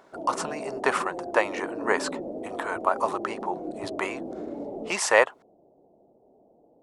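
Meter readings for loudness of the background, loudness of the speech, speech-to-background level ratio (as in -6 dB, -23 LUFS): -35.5 LUFS, -27.5 LUFS, 8.0 dB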